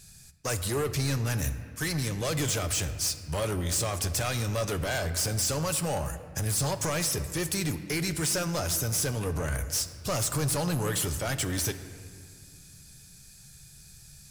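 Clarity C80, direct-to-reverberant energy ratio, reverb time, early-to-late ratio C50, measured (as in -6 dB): 12.0 dB, 9.0 dB, 2.0 s, 11.0 dB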